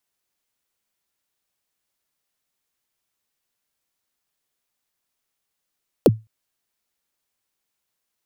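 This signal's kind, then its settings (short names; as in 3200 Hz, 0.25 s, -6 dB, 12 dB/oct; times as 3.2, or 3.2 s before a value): kick drum length 0.21 s, from 590 Hz, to 110 Hz, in 36 ms, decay 0.23 s, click on, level -5 dB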